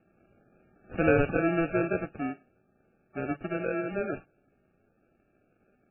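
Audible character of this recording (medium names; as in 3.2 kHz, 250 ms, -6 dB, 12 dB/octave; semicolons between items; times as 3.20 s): aliases and images of a low sample rate 1 kHz, jitter 0%; MP3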